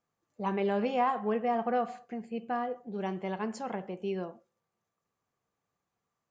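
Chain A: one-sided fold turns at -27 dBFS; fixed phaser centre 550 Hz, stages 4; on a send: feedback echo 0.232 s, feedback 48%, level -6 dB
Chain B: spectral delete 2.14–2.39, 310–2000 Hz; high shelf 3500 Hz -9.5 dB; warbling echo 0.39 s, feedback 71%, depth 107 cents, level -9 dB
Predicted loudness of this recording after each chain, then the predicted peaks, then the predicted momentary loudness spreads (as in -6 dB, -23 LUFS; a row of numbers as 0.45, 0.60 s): -36.5, -33.0 LUFS; -20.5, -17.0 dBFS; 12, 19 LU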